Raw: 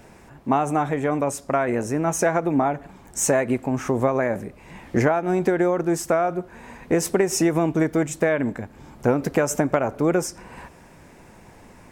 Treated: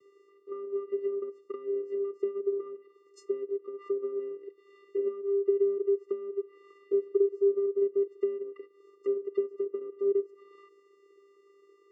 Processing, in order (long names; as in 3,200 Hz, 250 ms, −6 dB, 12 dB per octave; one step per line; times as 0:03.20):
treble cut that deepens with the level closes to 610 Hz, closed at −18 dBFS
healed spectral selection 0:06.84–0:07.66, 1,500–3,200 Hz both
channel vocoder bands 8, square 398 Hz
level −6.5 dB